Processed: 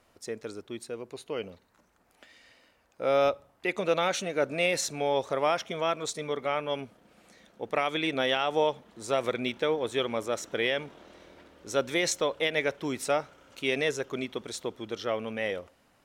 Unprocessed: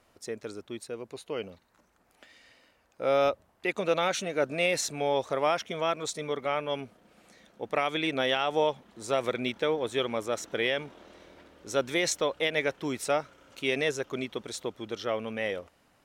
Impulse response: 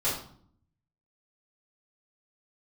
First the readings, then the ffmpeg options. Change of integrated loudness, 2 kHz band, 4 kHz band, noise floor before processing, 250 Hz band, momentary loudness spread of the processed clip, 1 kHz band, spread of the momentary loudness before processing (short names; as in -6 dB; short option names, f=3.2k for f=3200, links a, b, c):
0.0 dB, 0.0 dB, 0.0 dB, -67 dBFS, 0.0 dB, 12 LU, 0.0 dB, 13 LU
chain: -filter_complex "[0:a]asplit=2[a][b];[1:a]atrim=start_sample=2205[c];[b][c]afir=irnorm=-1:irlink=0,volume=-32dB[d];[a][d]amix=inputs=2:normalize=0"